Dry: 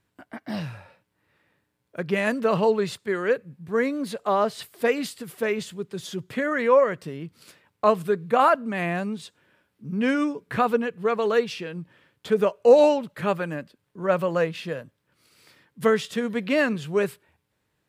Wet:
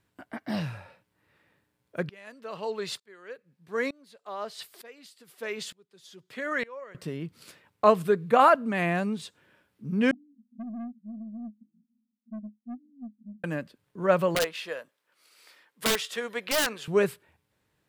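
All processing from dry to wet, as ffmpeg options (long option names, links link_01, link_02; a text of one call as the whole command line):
ffmpeg -i in.wav -filter_complex "[0:a]asettb=1/sr,asplit=3[link_01][link_02][link_03];[link_01]atrim=end=2.094[link_04];[link_02]atrim=start=2.09:end=6.95,asetpts=PTS-STARTPTS,afade=type=in:duration=0.004:curve=qsin,afade=type=out:start_time=4.856:duration=0.004:curve=qsin,highpass=frequency=470:poles=1,equalizer=frequency=4600:width=1.2:gain=4.5,aeval=exprs='val(0)*pow(10,-26*if(lt(mod(-1.1*n/s,1),2*abs(-1.1)/1000),1-mod(-1.1*n/s,1)/(2*abs(-1.1)/1000),(mod(-1.1*n/s,1)-2*abs(-1.1)/1000)/(1-2*abs(-1.1)/1000))/20)':channel_layout=same[link_05];[link_03]atrim=start=6.946[link_06];[link_04][link_05]acrossfade=duration=0.004:curve1=hsin:curve2=qsin[link_07];[link_07][link_06]acrossfade=duration=0.004:curve1=qsin:curve2=hsin,asettb=1/sr,asplit=3[link_08][link_09][link_10];[link_08]atrim=end=10.114[link_11];[link_09]atrim=start=10.11:end=13.44,asetpts=PTS-STARTPTS,afade=type=in:duration=0.004:curve=qsin,afade=type=out:start_time=3.326:duration=0.004:curve=qsin,asuperpass=centerf=230:order=8:qfactor=5.3,aeval=exprs='(tanh(50.1*val(0)+0.05)-tanh(0.05))/50.1':channel_layout=same[link_12];[link_10]atrim=start=13.436[link_13];[link_11][link_12]acrossfade=duration=0.004:curve1=hsin:curve2=qsin[link_14];[link_14][link_13]acrossfade=duration=0.004:curve1=qsin:curve2=hsin,asettb=1/sr,asplit=3[link_15][link_16][link_17];[link_15]atrim=end=14.354[link_18];[link_16]atrim=start=14.35:end=16.88,asetpts=PTS-STARTPTS,afade=type=in:duration=0.004:curve=qsin,afade=type=out:start_time=2.526:duration=0.004:curve=qsin,highpass=560,aeval=exprs='(mod(7.94*val(0)+1,2)-1)/7.94':channel_layout=same[link_19];[link_17]atrim=start=16.876[link_20];[link_18][link_19]acrossfade=duration=0.004:curve1=hsin:curve2=qsin[link_21];[link_21][link_20]acrossfade=duration=0.004:curve1=qsin:curve2=hsin" out.wav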